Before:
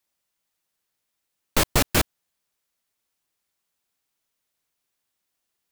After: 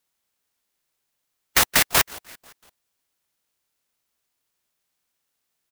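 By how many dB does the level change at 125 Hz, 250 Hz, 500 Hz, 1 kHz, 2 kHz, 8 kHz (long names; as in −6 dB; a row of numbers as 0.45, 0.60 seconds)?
−8.5, −7.0, −3.0, +2.5, +6.0, +5.0 decibels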